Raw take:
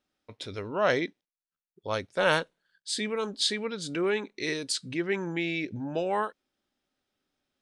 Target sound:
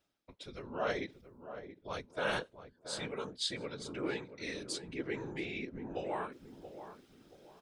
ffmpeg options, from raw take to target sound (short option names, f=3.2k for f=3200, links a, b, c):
-filter_complex "[0:a]bandreject=f=1.8k:w=25,areverse,acompressor=mode=upward:threshold=-38dB:ratio=2.5,areverse,afftfilt=real='hypot(re,im)*cos(2*PI*random(0))':imag='hypot(re,im)*sin(2*PI*random(1))':win_size=512:overlap=0.75,asplit=2[a][b];[b]adelay=678,lowpass=f=1k:p=1,volume=-10dB,asplit=2[c][d];[d]adelay=678,lowpass=f=1k:p=1,volume=0.37,asplit=2[e][f];[f]adelay=678,lowpass=f=1k:p=1,volume=0.37,asplit=2[g][h];[h]adelay=678,lowpass=f=1k:p=1,volume=0.37[i];[a][c][e][g][i]amix=inputs=5:normalize=0,volume=-3.5dB"